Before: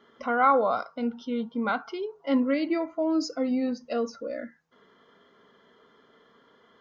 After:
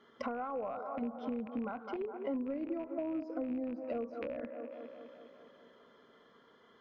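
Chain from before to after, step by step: rattling part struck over -42 dBFS, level -20 dBFS; sample leveller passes 1; on a send: band-limited delay 0.205 s, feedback 63%, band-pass 540 Hz, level -12 dB; on the sum: compressor 8:1, threshold -32 dBFS, peak gain reduction 17 dB; treble ducked by the level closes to 910 Hz, closed at -32 dBFS; gain -2 dB

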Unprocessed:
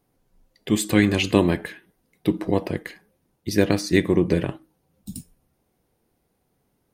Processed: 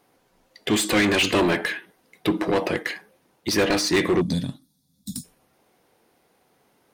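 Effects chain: spectral gain 4.21–5.24, 290–3300 Hz -23 dB; overdrive pedal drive 27 dB, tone 4500 Hz, clips at -3 dBFS; gain -7.5 dB

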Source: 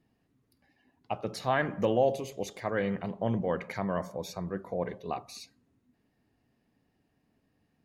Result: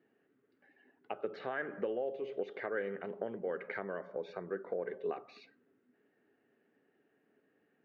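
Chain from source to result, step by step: compressor 5:1, threshold -37 dBFS, peak gain reduction 15.5 dB; speaker cabinet 340–2700 Hz, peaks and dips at 410 Hz +8 dB, 710 Hz -4 dB, 1000 Hz -9 dB, 1500 Hz +6 dB, 2400 Hz -4 dB; gain +3 dB

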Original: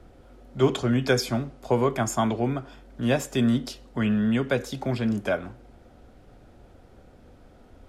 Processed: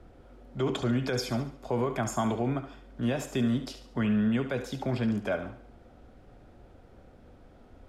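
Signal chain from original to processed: high shelf 4500 Hz -6.5 dB; limiter -17.5 dBFS, peak gain reduction 10.5 dB; thinning echo 71 ms, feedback 41%, level -10 dB; gain -2 dB

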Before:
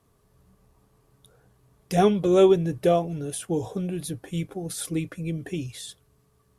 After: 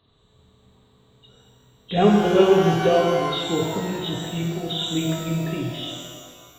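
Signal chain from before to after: nonlinear frequency compression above 2700 Hz 4:1; shimmer reverb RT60 1.7 s, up +12 st, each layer -8 dB, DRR -1 dB

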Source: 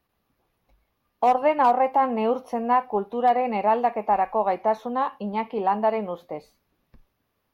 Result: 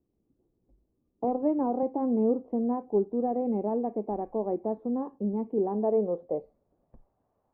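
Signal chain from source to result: low-pass sweep 340 Hz -> 760 Hz, 5.59–7.11; 1.24–1.83 three-band squash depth 40%; gain -2 dB

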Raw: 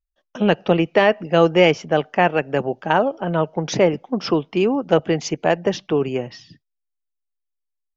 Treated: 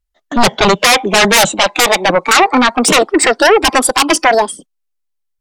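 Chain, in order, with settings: speed glide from 109% -> 186%; sine folder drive 16 dB, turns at -2 dBFS; spectral noise reduction 9 dB; gain -2 dB

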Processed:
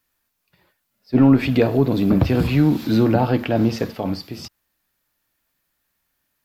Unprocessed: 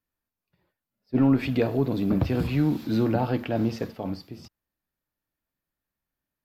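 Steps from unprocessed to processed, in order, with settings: mismatched tape noise reduction encoder only; gain +7 dB

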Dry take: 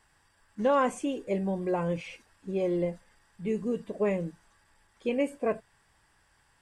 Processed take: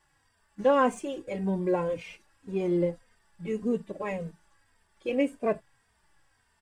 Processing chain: in parallel at -5 dB: backlash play -38.5 dBFS; on the sum: endless flanger 3 ms -1.8 Hz

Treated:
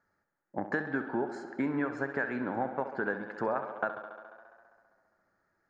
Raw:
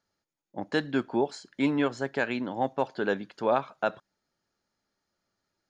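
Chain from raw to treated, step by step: resonant high shelf 2300 Hz -10.5 dB, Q 3; compressor, threshold -32 dBFS, peak gain reduction 14 dB; tape echo 68 ms, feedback 83%, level -10 dB, low-pass 5500 Hz; gain +3 dB

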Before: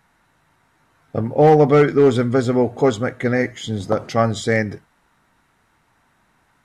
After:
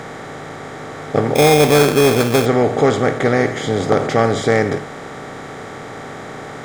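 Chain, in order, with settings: per-bin compression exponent 0.4; 1.35–2.46 sample-rate reducer 2900 Hz, jitter 0%; gain -2 dB

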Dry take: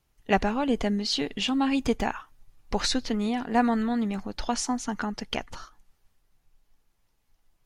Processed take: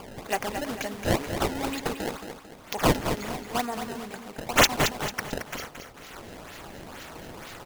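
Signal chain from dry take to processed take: HPF 110 Hz; upward compressor, threshold -31 dBFS; tone controls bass -15 dB, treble +11 dB; flange 1.7 Hz, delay 2.2 ms, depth 6.7 ms, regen -65%; resonant high shelf 5400 Hz +7 dB, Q 3; echo 0.133 s -20 dB; decimation with a swept rate 22×, swing 160% 2.1 Hz; feedback echo 0.223 s, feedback 39%, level -8 dB

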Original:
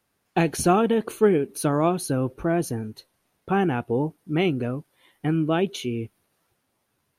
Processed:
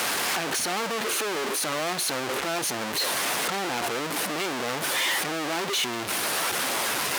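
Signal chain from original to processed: infinite clipping; weighting filter A

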